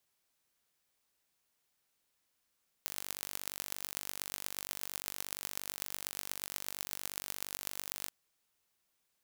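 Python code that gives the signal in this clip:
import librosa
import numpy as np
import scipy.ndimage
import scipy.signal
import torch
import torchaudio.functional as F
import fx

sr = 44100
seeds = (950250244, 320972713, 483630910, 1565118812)

y = fx.impulse_train(sr, length_s=5.23, per_s=48.6, accent_every=6, level_db=-8.5)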